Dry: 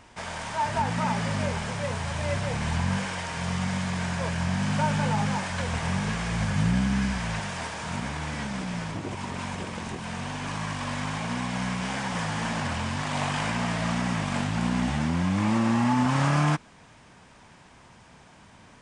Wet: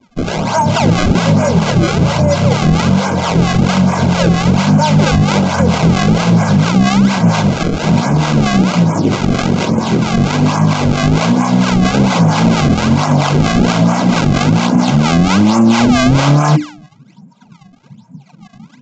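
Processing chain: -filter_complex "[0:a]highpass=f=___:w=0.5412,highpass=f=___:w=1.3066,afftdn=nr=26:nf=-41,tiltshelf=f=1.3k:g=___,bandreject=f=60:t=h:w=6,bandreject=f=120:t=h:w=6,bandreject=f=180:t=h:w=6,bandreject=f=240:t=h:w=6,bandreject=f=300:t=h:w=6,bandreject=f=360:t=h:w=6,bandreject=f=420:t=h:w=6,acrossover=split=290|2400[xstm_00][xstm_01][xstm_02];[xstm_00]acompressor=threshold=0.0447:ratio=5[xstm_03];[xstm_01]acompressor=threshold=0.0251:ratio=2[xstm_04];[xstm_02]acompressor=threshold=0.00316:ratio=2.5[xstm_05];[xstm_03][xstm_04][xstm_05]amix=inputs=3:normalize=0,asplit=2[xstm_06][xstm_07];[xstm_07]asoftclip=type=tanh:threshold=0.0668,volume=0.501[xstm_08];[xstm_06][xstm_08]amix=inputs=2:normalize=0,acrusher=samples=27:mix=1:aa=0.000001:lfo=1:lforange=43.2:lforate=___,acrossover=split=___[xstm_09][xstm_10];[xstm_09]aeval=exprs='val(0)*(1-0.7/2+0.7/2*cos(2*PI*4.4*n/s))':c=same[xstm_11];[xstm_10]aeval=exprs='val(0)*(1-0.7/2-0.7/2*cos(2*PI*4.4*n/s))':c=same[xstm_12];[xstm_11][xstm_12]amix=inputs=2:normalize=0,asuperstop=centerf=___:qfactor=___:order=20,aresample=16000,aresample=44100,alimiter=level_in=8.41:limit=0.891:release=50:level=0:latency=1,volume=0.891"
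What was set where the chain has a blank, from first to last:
120, 120, 9.5, 1.2, 590, 1800, 7.8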